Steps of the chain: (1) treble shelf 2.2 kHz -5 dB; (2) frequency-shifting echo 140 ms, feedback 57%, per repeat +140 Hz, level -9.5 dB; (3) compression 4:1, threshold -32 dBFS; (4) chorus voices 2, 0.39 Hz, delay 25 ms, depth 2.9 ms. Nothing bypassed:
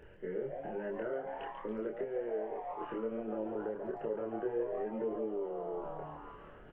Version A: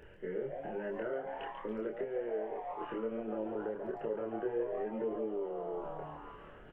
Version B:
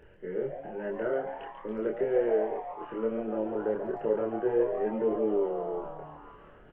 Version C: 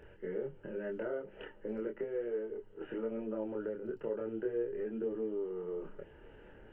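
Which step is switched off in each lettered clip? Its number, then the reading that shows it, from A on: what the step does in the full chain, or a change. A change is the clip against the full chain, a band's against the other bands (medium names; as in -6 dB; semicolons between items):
1, 2 kHz band +1.5 dB; 3, mean gain reduction 5.0 dB; 2, momentary loudness spread change +6 LU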